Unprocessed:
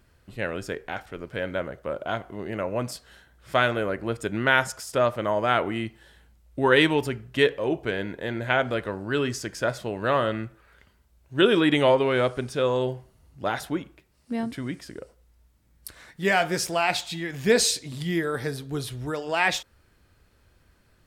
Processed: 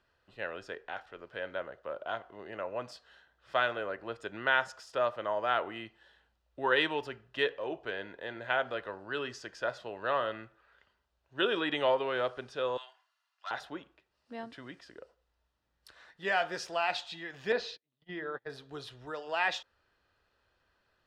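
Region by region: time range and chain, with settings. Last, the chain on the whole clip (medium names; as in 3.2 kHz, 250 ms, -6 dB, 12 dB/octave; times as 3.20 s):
12.77–13.51 s: high-pass 1.1 kHz 24 dB/octave + comb 2.9 ms, depth 49% + transformer saturation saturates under 3.2 kHz
17.52–18.50 s: de-hum 166 Hz, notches 2 + gate -29 dBFS, range -34 dB + distance through air 230 m
whole clip: three-band isolator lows -14 dB, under 440 Hz, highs -22 dB, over 5.2 kHz; band-stop 2.2 kHz, Q 6.9; trim -6 dB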